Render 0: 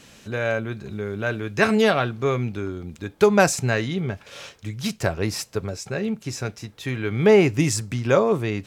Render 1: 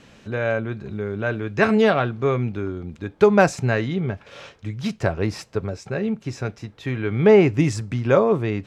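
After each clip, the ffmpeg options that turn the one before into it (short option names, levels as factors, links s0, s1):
-af "aemphasis=mode=reproduction:type=75fm,volume=1.12"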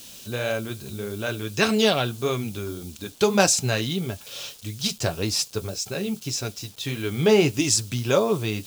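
-af "flanger=delay=2.9:depth=5.7:regen=-49:speed=1.7:shape=sinusoidal,acrusher=bits=9:mix=0:aa=0.000001,aexciter=amount=6.2:drive=6.1:freq=2900"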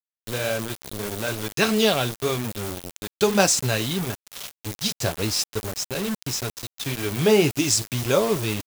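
-af "acrusher=bits=4:mix=0:aa=0.000001"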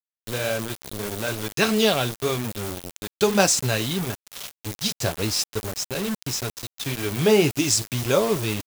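-af anull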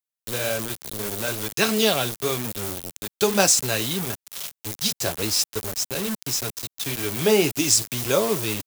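-filter_complex "[0:a]highshelf=f=5900:g=7,acrossover=split=190[s0][s1];[s0]asoftclip=type=tanh:threshold=0.0251[s2];[s2][s1]amix=inputs=2:normalize=0,volume=0.891"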